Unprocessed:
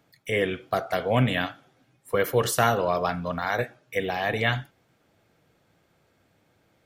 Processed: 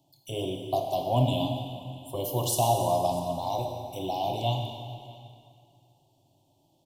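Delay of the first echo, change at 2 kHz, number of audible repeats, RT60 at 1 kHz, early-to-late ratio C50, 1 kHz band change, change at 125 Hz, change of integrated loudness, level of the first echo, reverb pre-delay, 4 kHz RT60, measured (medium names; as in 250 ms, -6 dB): 644 ms, -21.5 dB, 1, 2.3 s, 4.0 dB, -0.5 dB, 0.0 dB, -3.0 dB, -21.0 dB, 7 ms, 2.1 s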